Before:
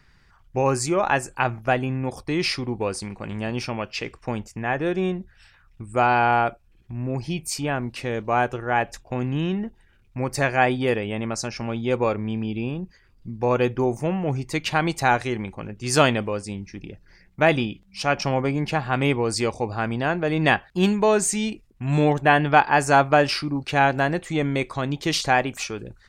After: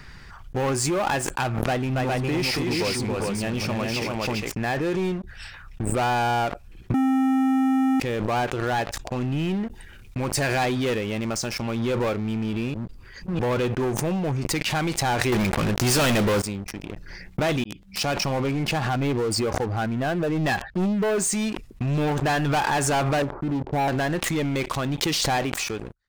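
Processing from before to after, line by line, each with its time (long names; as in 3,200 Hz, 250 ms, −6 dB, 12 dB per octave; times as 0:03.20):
0:01.57–0:04.53: multi-tap delay 279/411 ms −5/−3.5 dB
0:06.94–0:08.00: beep over 264 Hz −9 dBFS
0:09.66–0:10.95: high-shelf EQ 3,900 Hz +7 dB
0:12.74–0:13.39: reverse
0:15.32–0:16.42: leveller curve on the samples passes 5
0:17.64–0:18.16: fade in
0:18.89–0:21.18: expanding power law on the bin magnitudes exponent 1.5
0:23.22–0:23.88: elliptic low-pass filter 940 Hz, stop band 70 dB
whole clip: leveller curve on the samples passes 5; background raised ahead of every attack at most 25 dB per second; level −17 dB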